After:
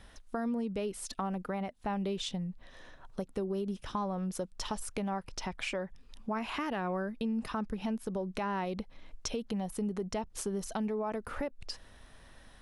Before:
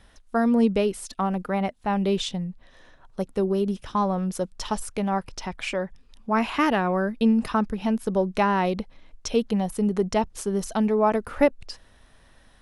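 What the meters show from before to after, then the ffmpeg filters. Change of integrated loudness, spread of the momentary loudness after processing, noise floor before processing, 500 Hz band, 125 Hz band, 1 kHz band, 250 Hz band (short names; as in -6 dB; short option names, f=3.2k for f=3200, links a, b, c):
-11.5 dB, 8 LU, -56 dBFS, -12.0 dB, -9.5 dB, -11.5 dB, -11.5 dB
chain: -af "alimiter=limit=-17dB:level=0:latency=1:release=100,acompressor=threshold=-36dB:ratio=2.5"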